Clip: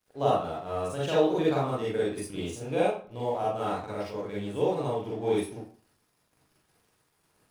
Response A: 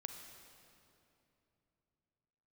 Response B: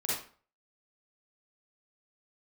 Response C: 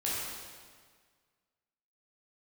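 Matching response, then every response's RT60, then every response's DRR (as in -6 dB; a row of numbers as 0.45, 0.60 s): B; 3.0, 0.45, 1.7 s; 5.0, -7.5, -7.5 dB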